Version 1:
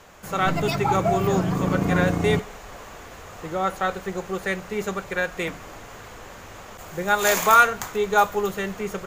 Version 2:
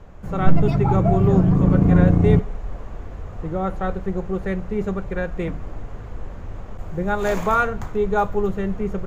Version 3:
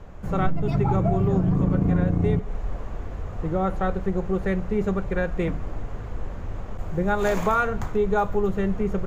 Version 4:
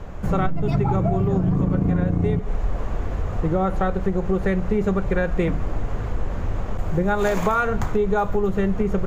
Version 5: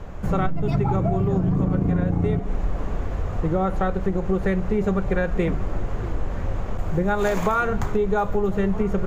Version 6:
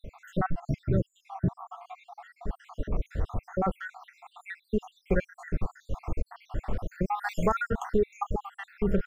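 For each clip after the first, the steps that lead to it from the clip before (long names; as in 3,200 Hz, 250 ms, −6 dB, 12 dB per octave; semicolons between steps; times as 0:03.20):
spectral tilt −4.5 dB per octave; level −3.5 dB
downward compressor 8 to 1, threshold −18 dBFS, peak gain reduction 12.5 dB; level +1 dB
downward compressor, threshold −24 dBFS, peak gain reduction 9 dB; level +7.5 dB
echo through a band-pass that steps 635 ms, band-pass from 280 Hz, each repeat 1.4 octaves, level −12 dB; level −1 dB
time-frequency cells dropped at random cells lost 73%; level −2 dB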